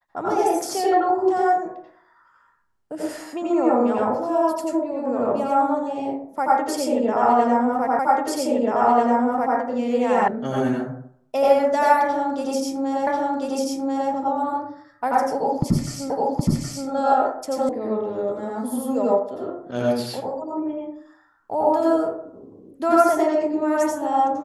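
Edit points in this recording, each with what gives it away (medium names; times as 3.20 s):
7.99 s: repeat of the last 1.59 s
10.28 s: sound stops dead
13.07 s: repeat of the last 1.04 s
16.10 s: repeat of the last 0.77 s
17.69 s: sound stops dead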